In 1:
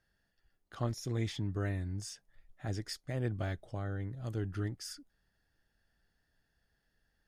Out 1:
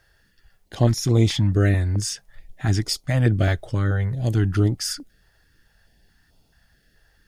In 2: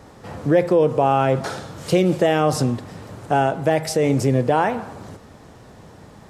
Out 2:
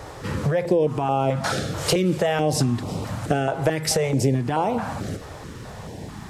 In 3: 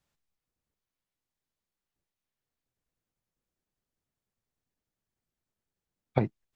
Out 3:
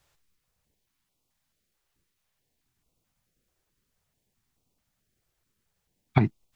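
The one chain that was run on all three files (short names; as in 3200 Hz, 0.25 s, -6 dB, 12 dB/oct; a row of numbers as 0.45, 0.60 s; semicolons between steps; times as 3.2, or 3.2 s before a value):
compressor 10:1, threshold -24 dBFS; stepped notch 4.6 Hz 220–1700 Hz; normalise peaks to -6 dBFS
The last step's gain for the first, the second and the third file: +17.5, +9.0, +12.0 dB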